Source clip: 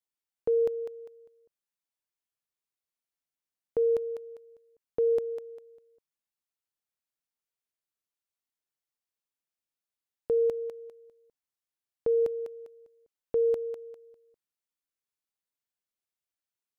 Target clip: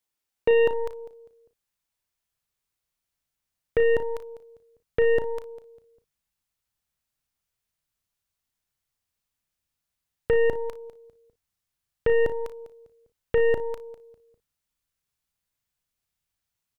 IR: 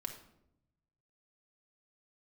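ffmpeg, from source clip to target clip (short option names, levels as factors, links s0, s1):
-af "asubboost=boost=4.5:cutoff=150,aeval=exprs='0.119*(cos(1*acos(clip(val(0)/0.119,-1,1)))-cos(1*PI/2))+0.015*(cos(8*acos(clip(val(0)/0.119,-1,1)))-cos(8*PI/2))':c=same,aecho=1:1:34|57:0.266|0.15,volume=2.37"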